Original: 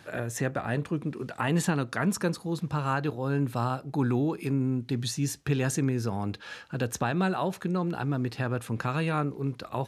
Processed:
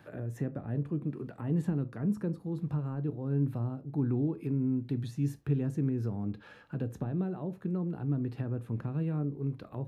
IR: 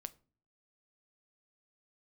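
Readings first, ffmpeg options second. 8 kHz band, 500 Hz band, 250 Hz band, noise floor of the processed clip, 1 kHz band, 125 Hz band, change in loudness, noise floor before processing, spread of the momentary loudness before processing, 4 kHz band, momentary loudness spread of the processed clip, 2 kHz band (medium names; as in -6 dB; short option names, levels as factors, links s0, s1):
under -20 dB, -7.5 dB, -3.0 dB, -55 dBFS, -17.0 dB, -2.0 dB, -4.0 dB, -51 dBFS, 6 LU, under -20 dB, 6 LU, -19.0 dB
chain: -filter_complex "[0:a]equalizer=f=6400:t=o:w=2.3:g=-13,acrossover=split=440[s0][s1];[s1]acompressor=threshold=0.00398:ratio=6[s2];[s0][s2]amix=inputs=2:normalize=0[s3];[1:a]atrim=start_sample=2205,atrim=end_sample=3969[s4];[s3][s4]afir=irnorm=-1:irlink=0,volume=1.19"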